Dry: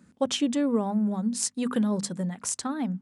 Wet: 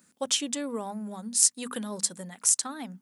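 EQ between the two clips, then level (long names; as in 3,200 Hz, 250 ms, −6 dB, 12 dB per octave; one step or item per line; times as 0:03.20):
RIAA equalisation recording
−3.5 dB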